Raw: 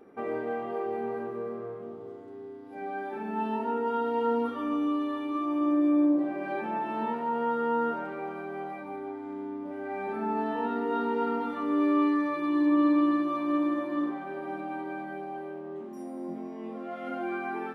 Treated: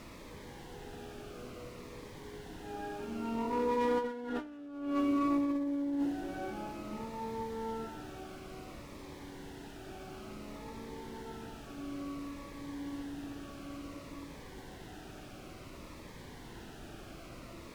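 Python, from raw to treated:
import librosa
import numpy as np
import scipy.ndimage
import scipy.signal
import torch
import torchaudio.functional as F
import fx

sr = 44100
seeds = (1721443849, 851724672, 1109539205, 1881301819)

y = fx.fade_in_head(x, sr, length_s=1.76)
y = fx.doppler_pass(y, sr, speed_mps=14, closest_m=2.6, pass_at_s=4.48)
y = fx.dmg_noise_colour(y, sr, seeds[0], colour='pink', level_db=-59.0)
y = fx.lowpass(y, sr, hz=2000.0, slope=6)
y = fx.clip_asym(y, sr, top_db=-42.0, bottom_db=-27.5)
y = fx.peak_eq(y, sr, hz=320.0, db=3.5, octaves=0.21)
y = fx.over_compress(y, sr, threshold_db=-42.0, ratio=-0.5)
y = fx.low_shelf(y, sr, hz=95.0, db=-5.0)
y = fx.notch_cascade(y, sr, direction='falling', hz=0.57)
y = y * 10.0 ** (11.5 / 20.0)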